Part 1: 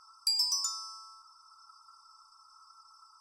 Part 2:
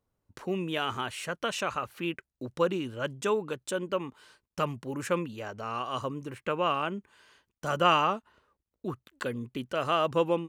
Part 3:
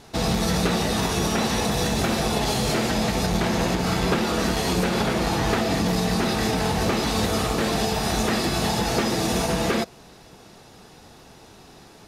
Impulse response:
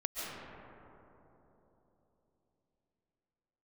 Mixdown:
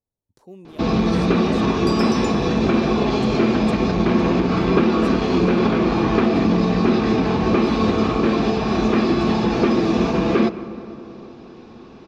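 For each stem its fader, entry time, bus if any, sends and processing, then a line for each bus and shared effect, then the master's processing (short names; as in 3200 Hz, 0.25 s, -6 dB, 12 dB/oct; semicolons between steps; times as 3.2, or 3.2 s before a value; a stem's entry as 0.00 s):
-4.0 dB, 1.60 s, no send, no echo send, high shelf 10000 Hz -12 dB
-11.0 dB, 0.00 s, send -15 dB, echo send -18.5 dB, band shelf 1900 Hz -11 dB
-1.5 dB, 0.65 s, send -17 dB, no echo send, Bessel low-pass 3500 Hz, order 8; notch 1900 Hz, Q 25; small resonant body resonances 250/350/1100/2400 Hz, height 10 dB, ringing for 30 ms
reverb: on, RT60 3.6 s, pre-delay 0.1 s
echo: echo 0.508 s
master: dry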